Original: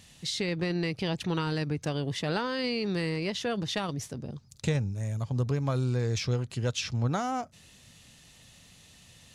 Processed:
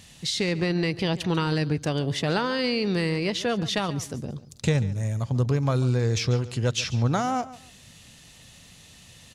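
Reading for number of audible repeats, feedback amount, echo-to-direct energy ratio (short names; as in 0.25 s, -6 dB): 2, 23%, -17.0 dB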